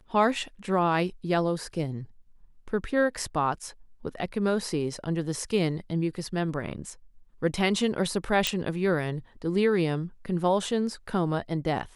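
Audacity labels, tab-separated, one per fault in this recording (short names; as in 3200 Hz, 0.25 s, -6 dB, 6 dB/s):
8.470000	8.470000	pop -8 dBFS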